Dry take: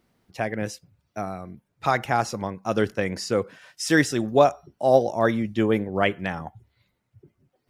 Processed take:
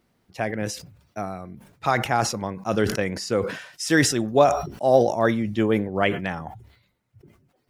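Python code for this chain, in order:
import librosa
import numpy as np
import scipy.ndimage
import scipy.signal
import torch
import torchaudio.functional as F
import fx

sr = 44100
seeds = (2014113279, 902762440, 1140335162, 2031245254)

y = fx.sustainer(x, sr, db_per_s=84.0)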